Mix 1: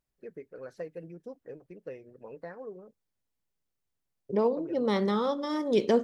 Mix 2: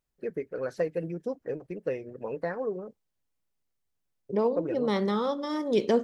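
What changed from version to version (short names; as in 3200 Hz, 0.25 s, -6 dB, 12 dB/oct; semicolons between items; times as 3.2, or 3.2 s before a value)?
first voice +10.5 dB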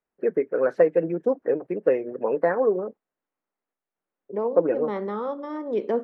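first voice +11.0 dB; master: add three-band isolator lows -23 dB, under 210 Hz, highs -22 dB, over 2100 Hz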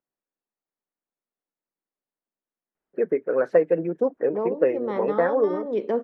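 first voice: entry +2.75 s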